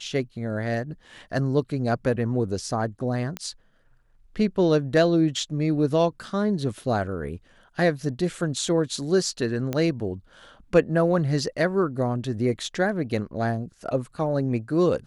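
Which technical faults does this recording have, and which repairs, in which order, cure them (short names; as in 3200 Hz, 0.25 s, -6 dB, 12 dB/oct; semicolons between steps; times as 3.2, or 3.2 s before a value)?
3.37 pop -15 dBFS
9.73 pop -14 dBFS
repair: de-click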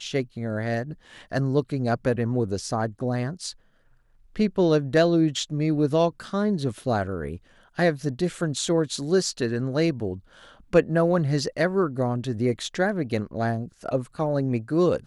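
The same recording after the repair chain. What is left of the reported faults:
none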